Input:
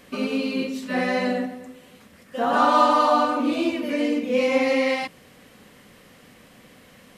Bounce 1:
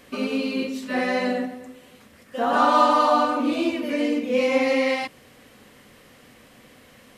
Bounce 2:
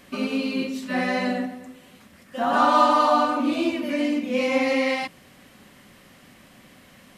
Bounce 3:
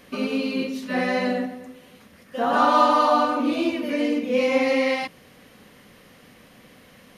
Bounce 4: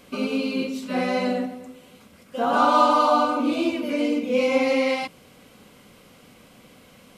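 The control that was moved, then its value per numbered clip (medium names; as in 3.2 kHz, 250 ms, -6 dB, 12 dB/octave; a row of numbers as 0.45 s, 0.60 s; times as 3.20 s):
band-stop, frequency: 180 Hz, 470 Hz, 7.7 kHz, 1.8 kHz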